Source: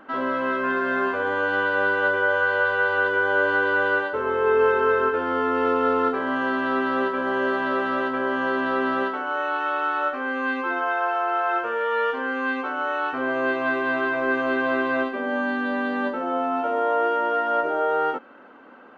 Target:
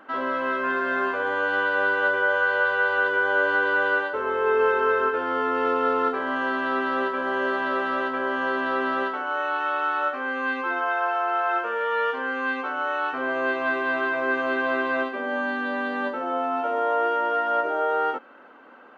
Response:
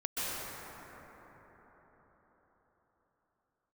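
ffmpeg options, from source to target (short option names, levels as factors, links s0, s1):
-af "lowshelf=f=240:g=-10"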